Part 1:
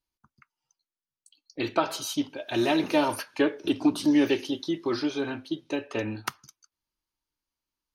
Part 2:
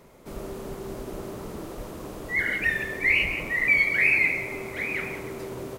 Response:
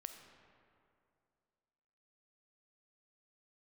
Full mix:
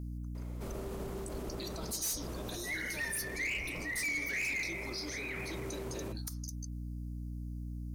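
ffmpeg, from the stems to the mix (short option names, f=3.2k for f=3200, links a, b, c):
-filter_complex "[0:a]alimiter=limit=-19dB:level=0:latency=1:release=307,aexciter=amount=14.6:drive=7.7:freq=4.5k,volume=-10.5dB[a];[1:a]adelay=350,volume=-2dB[b];[a][b]amix=inputs=2:normalize=0,aeval=exprs='val(0)+0.0112*(sin(2*PI*60*n/s)+sin(2*PI*2*60*n/s)/2+sin(2*PI*3*60*n/s)/3+sin(2*PI*4*60*n/s)/4+sin(2*PI*5*60*n/s)/5)':c=same,volume=21.5dB,asoftclip=hard,volume=-21.5dB,alimiter=level_in=7.5dB:limit=-24dB:level=0:latency=1:release=49,volume=-7.5dB"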